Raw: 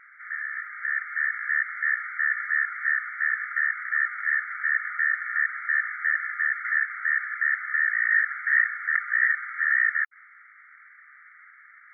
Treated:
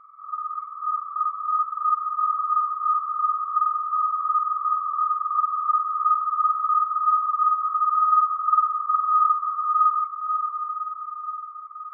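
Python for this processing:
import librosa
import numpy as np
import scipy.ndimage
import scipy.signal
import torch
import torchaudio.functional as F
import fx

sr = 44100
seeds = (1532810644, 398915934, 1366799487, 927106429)

y = fx.freq_compress(x, sr, knee_hz=1100.0, ratio=4.0)
y = fx.echo_diffused(y, sr, ms=584, feedback_pct=58, wet_db=-5.5)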